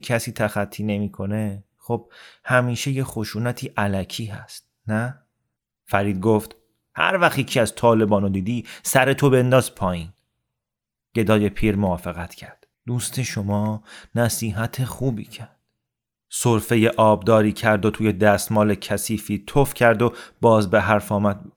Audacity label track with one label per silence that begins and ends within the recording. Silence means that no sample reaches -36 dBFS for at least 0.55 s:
5.130000	5.890000	silence
10.100000	11.150000	silence
15.450000	16.320000	silence